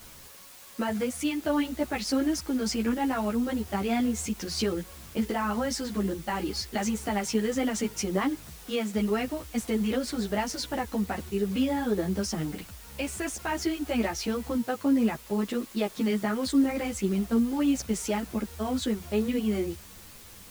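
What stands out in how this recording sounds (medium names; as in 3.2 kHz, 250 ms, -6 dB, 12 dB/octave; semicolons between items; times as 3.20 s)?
a quantiser's noise floor 8-bit, dither triangular; a shimmering, thickened sound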